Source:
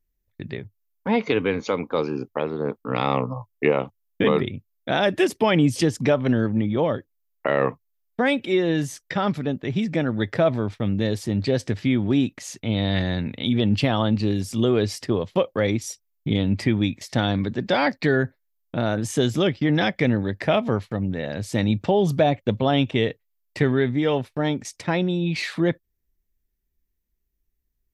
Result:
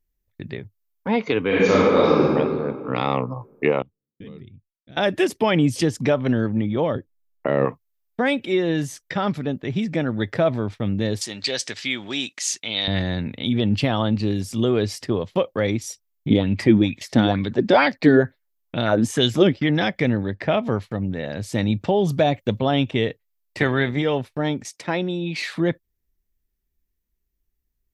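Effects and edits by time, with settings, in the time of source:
1.47–2.32 reverb throw, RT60 2 s, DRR -9 dB
3.82–4.97 passive tone stack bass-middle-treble 10-0-1
6.95–7.65 tilt shelf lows +6 dB, about 640 Hz
11.21–12.88 weighting filter ITU-R 468
16.3–19.69 LFO bell 2.2 Hz 230–3500 Hz +12 dB
20.23–20.64 air absorption 95 m
22.19–22.59 high shelf 4600 Hz +8 dB
23.59–24.01 spectral limiter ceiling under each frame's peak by 13 dB
24.68–25.42 HPF 200 Hz

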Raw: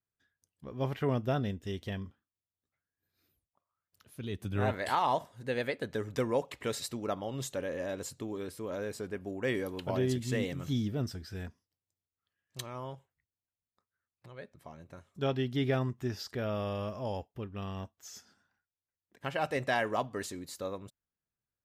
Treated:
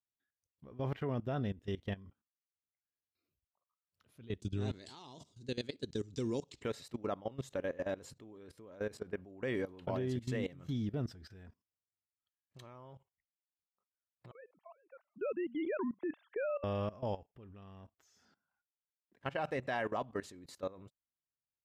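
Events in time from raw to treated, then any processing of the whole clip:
4.4–6.63 EQ curve 260 Hz 0 dB, 380 Hz +1 dB, 550 Hz -13 dB, 1900 Hz -12 dB, 4100 Hz +10 dB, 7300 Hz +14 dB, 13000 Hz -8 dB
14.31–16.64 sine-wave speech
whole clip: spectral noise reduction 10 dB; LPF 2800 Hz 6 dB/oct; level quantiser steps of 18 dB; gain +1 dB

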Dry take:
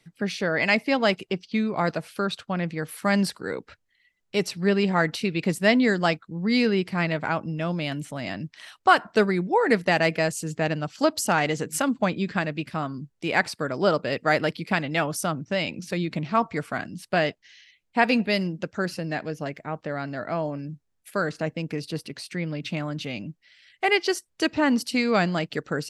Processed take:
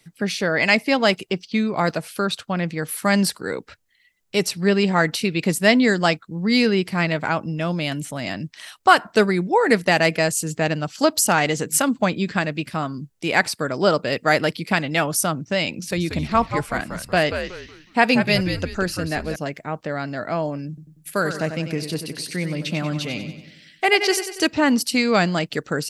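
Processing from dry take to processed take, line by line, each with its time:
15.72–19.36 frequency-shifting echo 0.184 s, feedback 31%, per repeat -95 Hz, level -8 dB
20.68–24.47 feedback echo 94 ms, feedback 51%, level -9 dB
whole clip: high shelf 6300 Hz +10 dB; gain +3.5 dB

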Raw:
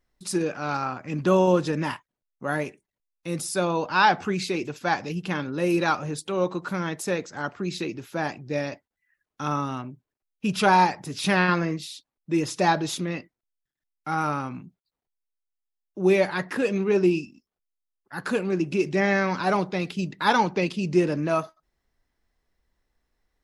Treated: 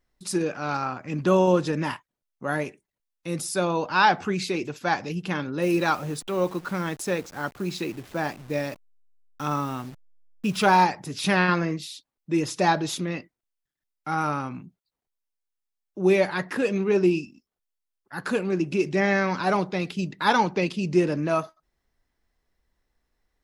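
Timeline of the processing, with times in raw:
5.62–10.84 level-crossing sampler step -42 dBFS

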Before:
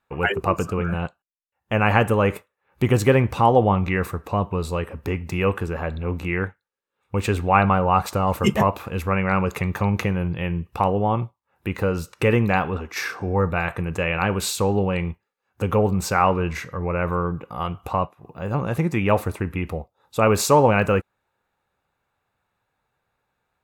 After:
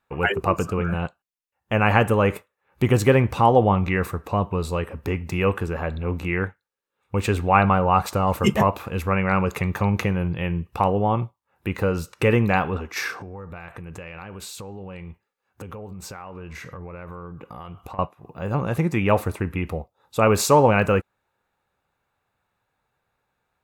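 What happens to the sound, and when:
13.18–17.99 compressor 16:1, threshold -33 dBFS

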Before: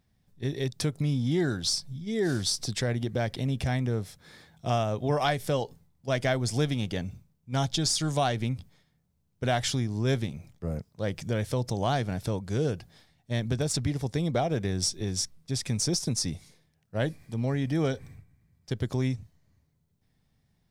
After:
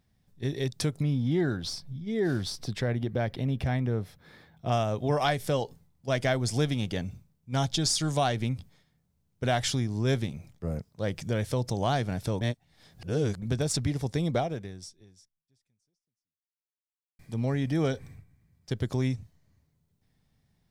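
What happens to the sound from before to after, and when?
1.03–4.72 bell 7700 Hz -12.5 dB 1.6 oct
12.41–13.42 reverse
14.37–17.19 fade out exponential

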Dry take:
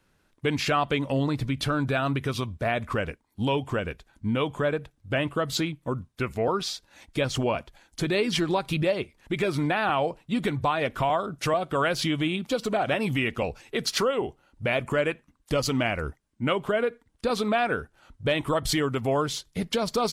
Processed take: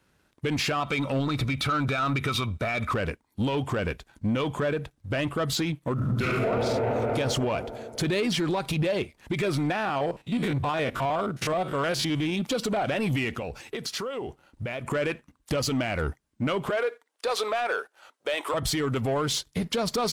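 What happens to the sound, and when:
0.8–2.91 small resonant body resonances 1300/2300/3700 Hz, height 14 dB, ringing for 25 ms
5.94–6.49 reverb throw, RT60 2.4 s, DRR -12 dB
9.75–12.33 stepped spectrum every 50 ms
13.32–14.92 compressor 8:1, threshold -35 dBFS
16.7–18.54 HPF 450 Hz 24 dB/oct
whole clip: HPF 42 Hz; limiter -22.5 dBFS; sample leveller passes 1; gain +2.5 dB

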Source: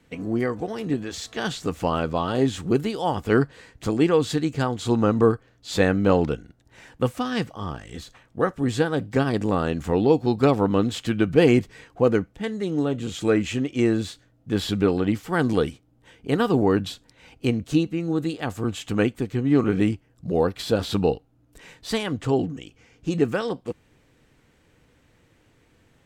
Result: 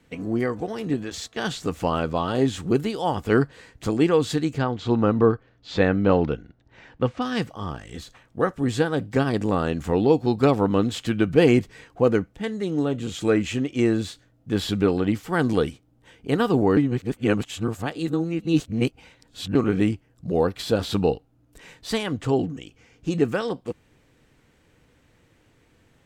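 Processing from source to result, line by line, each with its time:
1.1–1.52 gate -40 dBFS, range -10 dB
4.58–7.22 Bessel low-pass 3700 Hz, order 4
16.77–19.55 reverse

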